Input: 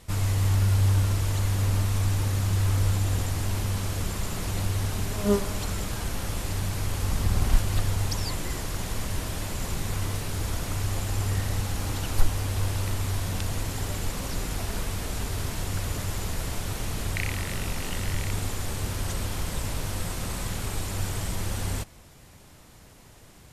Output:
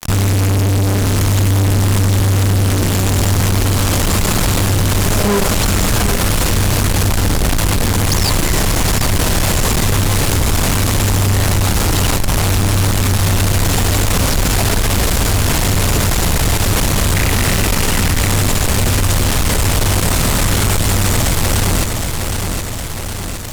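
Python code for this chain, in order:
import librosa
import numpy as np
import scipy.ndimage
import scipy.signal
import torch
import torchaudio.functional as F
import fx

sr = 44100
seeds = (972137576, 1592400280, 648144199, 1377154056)

y = fx.fuzz(x, sr, gain_db=38.0, gate_db=-44.0)
y = fx.echo_feedback(y, sr, ms=764, feedback_pct=40, wet_db=-10)
y = fx.env_flatten(y, sr, amount_pct=50)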